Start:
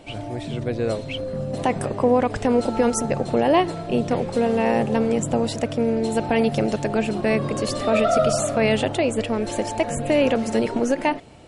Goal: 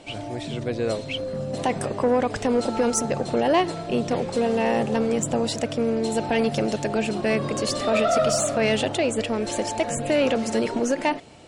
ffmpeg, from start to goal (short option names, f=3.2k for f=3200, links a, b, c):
-af "lowpass=7.4k,aemphasis=mode=production:type=cd,asoftclip=type=tanh:threshold=-12dB,lowshelf=f=97:g=-7.5"